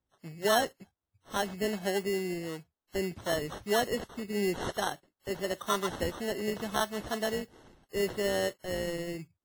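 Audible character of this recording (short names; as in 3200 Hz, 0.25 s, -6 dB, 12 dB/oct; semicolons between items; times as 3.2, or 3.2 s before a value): aliases and images of a low sample rate 2400 Hz, jitter 0%; WMA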